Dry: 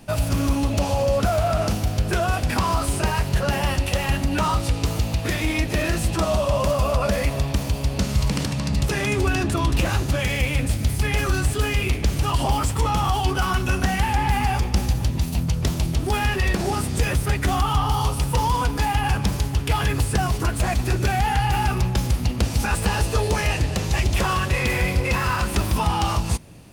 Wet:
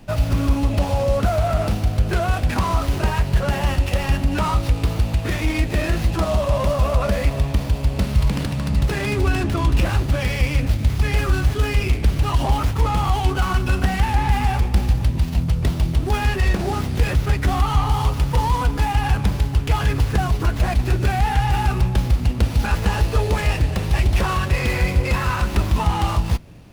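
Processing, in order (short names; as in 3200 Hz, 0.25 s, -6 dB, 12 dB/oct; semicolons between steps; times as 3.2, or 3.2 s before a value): low shelf 61 Hz +9 dB; running maximum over 5 samples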